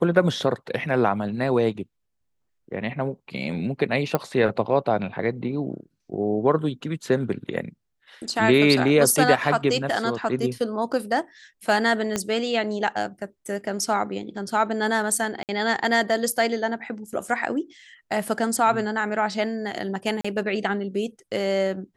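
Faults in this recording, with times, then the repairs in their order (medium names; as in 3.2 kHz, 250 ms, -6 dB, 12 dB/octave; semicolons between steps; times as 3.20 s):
4.15 s: pop -9 dBFS
12.16 s: pop -10 dBFS
15.43–15.49 s: dropout 58 ms
20.21–20.25 s: dropout 35 ms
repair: de-click; interpolate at 15.43 s, 58 ms; interpolate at 20.21 s, 35 ms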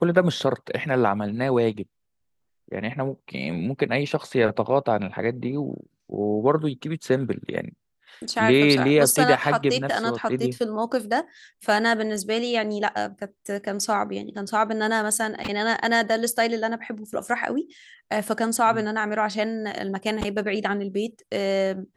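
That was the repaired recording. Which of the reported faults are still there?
12.16 s: pop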